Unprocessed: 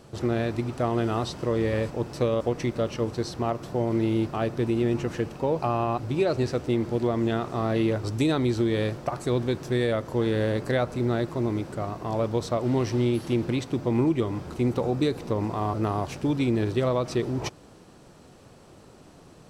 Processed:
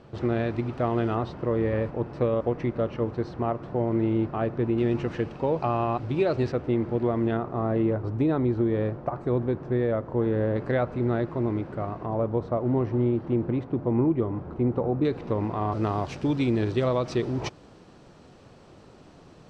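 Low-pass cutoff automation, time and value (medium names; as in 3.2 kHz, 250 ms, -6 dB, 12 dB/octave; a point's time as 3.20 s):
3 kHz
from 1.15 s 1.9 kHz
from 4.78 s 3.5 kHz
from 6.52 s 2.1 kHz
from 7.37 s 1.3 kHz
from 10.56 s 2.1 kHz
from 12.06 s 1.2 kHz
from 15.05 s 2.7 kHz
from 15.72 s 5.4 kHz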